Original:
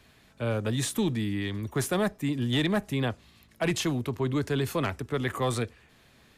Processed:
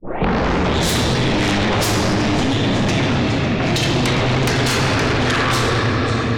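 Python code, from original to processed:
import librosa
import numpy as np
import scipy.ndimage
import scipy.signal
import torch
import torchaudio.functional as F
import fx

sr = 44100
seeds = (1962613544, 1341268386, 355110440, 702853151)

y = fx.tape_start_head(x, sr, length_s=0.74)
y = np.clip(y, -10.0 ** (-27.0 / 20.0), 10.0 ** (-27.0 / 20.0))
y = scipy.signal.sosfilt(scipy.signal.butter(4, 6100.0, 'lowpass', fs=sr, output='sos'), y)
y = fx.low_shelf(y, sr, hz=300.0, db=-7.5)
y = fx.env_lowpass(y, sr, base_hz=1400.0, full_db=-29.5)
y = fx.over_compress(y, sr, threshold_db=-39.0, ratio=-0.5)
y = fx.echo_swing(y, sr, ms=915, ratio=1.5, feedback_pct=37, wet_db=-19.0)
y = fx.room_shoebox(y, sr, seeds[0], volume_m3=170.0, walls='hard', distance_m=0.87)
y = fx.fold_sine(y, sr, drive_db=15, ceiling_db=-16.5)
y = fx.band_squash(y, sr, depth_pct=70)
y = y * librosa.db_to_amplitude(2.5)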